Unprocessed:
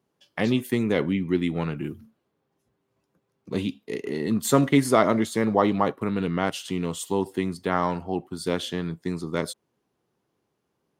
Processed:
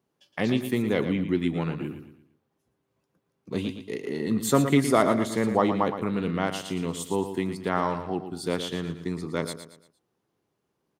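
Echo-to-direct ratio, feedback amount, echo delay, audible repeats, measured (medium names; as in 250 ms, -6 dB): -9.0 dB, 38%, 115 ms, 4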